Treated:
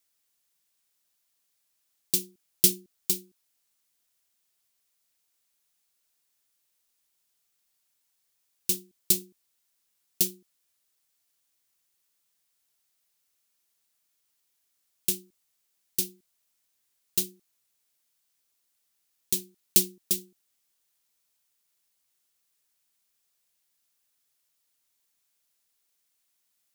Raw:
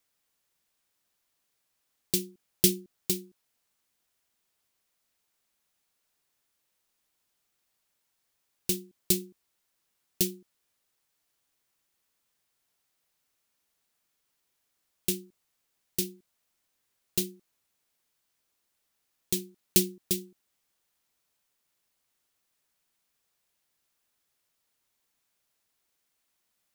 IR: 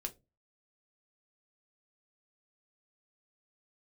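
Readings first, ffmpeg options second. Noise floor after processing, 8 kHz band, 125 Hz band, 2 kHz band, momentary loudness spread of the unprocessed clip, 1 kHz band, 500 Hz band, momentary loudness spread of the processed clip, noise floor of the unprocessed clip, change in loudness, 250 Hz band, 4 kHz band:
-75 dBFS, +3.0 dB, -5.5 dB, -1.5 dB, 11 LU, n/a, -5.5 dB, 9 LU, -78 dBFS, +2.5 dB, -5.5 dB, +1.0 dB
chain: -af "highshelf=f=2.9k:g=9.5,volume=-5.5dB"

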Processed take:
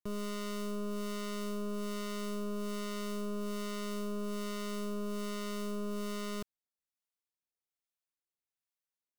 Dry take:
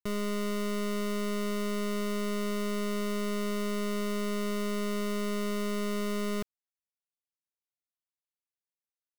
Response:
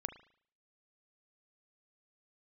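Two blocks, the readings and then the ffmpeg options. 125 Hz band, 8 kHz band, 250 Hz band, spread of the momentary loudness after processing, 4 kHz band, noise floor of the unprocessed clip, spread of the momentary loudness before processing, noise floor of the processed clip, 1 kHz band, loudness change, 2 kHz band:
n/a, -4.5 dB, -6.0 dB, 1 LU, -5.0 dB, under -85 dBFS, 0 LU, under -85 dBFS, -5.5 dB, -6.0 dB, -8.5 dB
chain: -filter_complex "[0:a]acrossover=split=680[a][b];[a]aeval=exprs='val(0)*(1-0.5/2+0.5/2*cos(2*PI*1.2*n/s))':c=same[c];[b]aeval=exprs='val(0)*(1-0.5/2-0.5/2*cos(2*PI*1.2*n/s))':c=same[d];[c][d]amix=inputs=2:normalize=0,asoftclip=type=tanh:threshold=-34.5dB"

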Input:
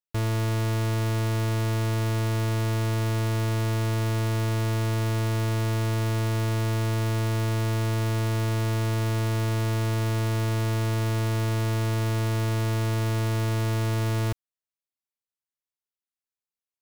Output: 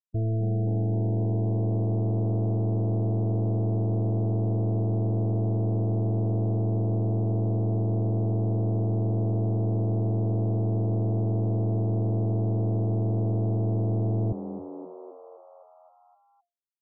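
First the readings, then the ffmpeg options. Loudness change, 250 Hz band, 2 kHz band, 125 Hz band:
0.0 dB, +2.5 dB, under -40 dB, 0.0 dB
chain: -filter_complex "[0:a]afftfilt=real='re*gte(hypot(re,im),0.0891)':imag='im*gte(hypot(re,im),0.0891)':win_size=1024:overlap=0.75,bandreject=f=4.1k:w=14,asplit=9[a][b][c][d][e][f][g][h][i];[b]adelay=260,afreqshift=87,volume=-11.5dB[j];[c]adelay=520,afreqshift=174,volume=-15.5dB[k];[d]adelay=780,afreqshift=261,volume=-19.5dB[l];[e]adelay=1040,afreqshift=348,volume=-23.5dB[m];[f]adelay=1300,afreqshift=435,volume=-27.6dB[n];[g]adelay=1560,afreqshift=522,volume=-31.6dB[o];[h]adelay=1820,afreqshift=609,volume=-35.6dB[p];[i]adelay=2080,afreqshift=696,volume=-39.6dB[q];[a][j][k][l][m][n][o][p][q]amix=inputs=9:normalize=0"

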